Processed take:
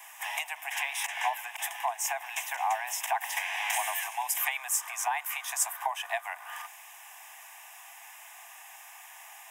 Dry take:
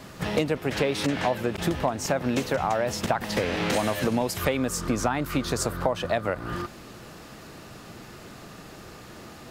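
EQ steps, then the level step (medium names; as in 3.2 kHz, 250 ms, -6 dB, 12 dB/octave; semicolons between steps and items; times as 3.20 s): steep high-pass 650 Hz 96 dB/octave; treble shelf 4.5 kHz +9.5 dB; static phaser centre 890 Hz, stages 8; 0.0 dB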